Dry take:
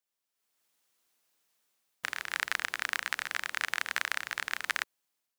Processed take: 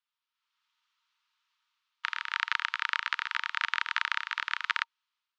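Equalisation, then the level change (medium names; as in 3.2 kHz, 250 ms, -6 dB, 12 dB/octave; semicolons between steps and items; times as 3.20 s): rippled Chebyshev high-pass 900 Hz, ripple 6 dB; distance through air 180 m; treble shelf 9.5 kHz -8 dB; +8.5 dB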